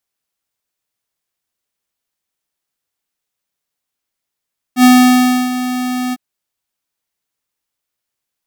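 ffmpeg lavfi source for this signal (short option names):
-f lavfi -i "aevalsrc='0.531*(2*lt(mod(251*t,1),0.5)-1)':d=1.404:s=44100,afade=t=in:d=0.076,afade=t=out:st=0.076:d=0.658:silence=0.224,afade=t=out:st=1.37:d=0.034"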